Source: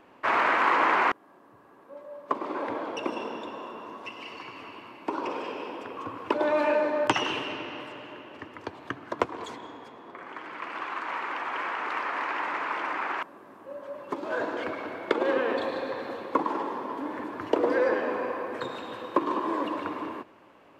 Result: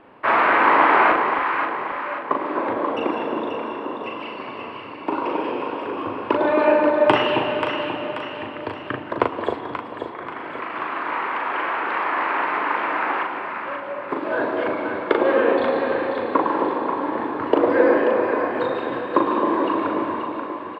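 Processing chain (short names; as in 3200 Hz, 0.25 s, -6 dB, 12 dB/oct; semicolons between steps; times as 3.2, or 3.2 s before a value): running mean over 7 samples; doubler 39 ms -4.5 dB; on a send: echo with dull and thin repeats by turns 0.267 s, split 850 Hz, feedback 70%, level -3 dB; on the sum: gain +6 dB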